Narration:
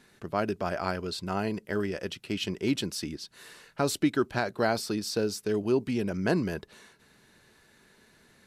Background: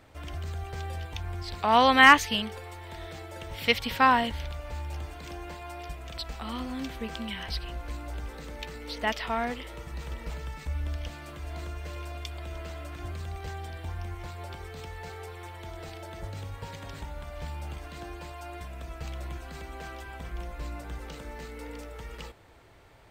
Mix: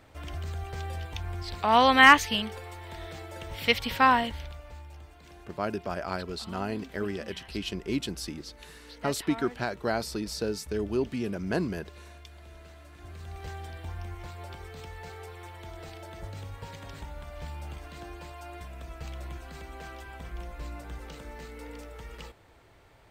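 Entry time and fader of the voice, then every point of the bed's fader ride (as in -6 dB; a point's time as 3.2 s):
5.25 s, -2.5 dB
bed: 4.12 s 0 dB
4.93 s -11 dB
12.93 s -11 dB
13.45 s -2 dB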